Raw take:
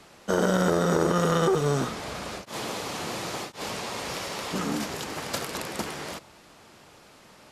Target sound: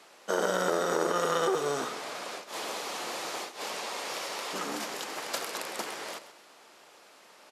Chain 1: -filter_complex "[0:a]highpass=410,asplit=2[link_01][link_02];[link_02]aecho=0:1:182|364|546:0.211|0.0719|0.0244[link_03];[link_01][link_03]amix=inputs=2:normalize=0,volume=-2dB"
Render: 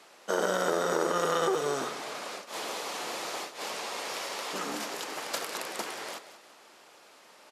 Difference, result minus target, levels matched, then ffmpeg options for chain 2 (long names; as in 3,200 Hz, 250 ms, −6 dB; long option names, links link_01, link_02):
echo 51 ms late
-filter_complex "[0:a]highpass=410,asplit=2[link_01][link_02];[link_02]aecho=0:1:131|262|393:0.211|0.0719|0.0244[link_03];[link_01][link_03]amix=inputs=2:normalize=0,volume=-2dB"